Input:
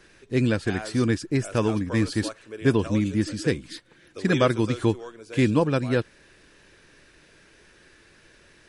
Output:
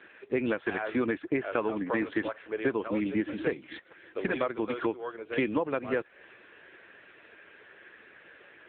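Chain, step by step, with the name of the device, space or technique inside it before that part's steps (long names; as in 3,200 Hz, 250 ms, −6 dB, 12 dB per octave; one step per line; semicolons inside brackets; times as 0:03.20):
voicemail (band-pass filter 410–2,800 Hz; downward compressor 10 to 1, threshold −32 dBFS, peak gain reduction 16.5 dB; level +8 dB; AMR narrowband 6.7 kbit/s 8,000 Hz)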